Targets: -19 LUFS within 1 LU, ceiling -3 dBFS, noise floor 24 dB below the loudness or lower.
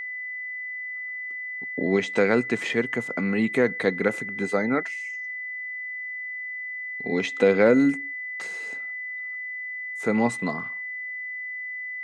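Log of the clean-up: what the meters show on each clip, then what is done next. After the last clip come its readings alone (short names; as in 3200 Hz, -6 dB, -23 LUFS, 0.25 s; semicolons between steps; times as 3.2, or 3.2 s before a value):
steady tone 2000 Hz; tone level -31 dBFS; loudness -26.5 LUFS; peak -6.5 dBFS; loudness target -19.0 LUFS
-> notch 2000 Hz, Q 30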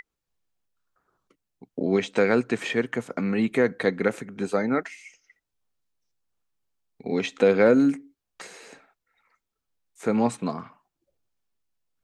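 steady tone none; loudness -24.5 LUFS; peak -6.5 dBFS; loudness target -19.0 LUFS
-> gain +5.5 dB; limiter -3 dBFS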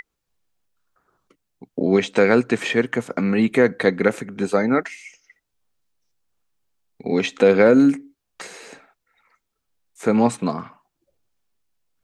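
loudness -19.0 LUFS; peak -3.0 dBFS; noise floor -78 dBFS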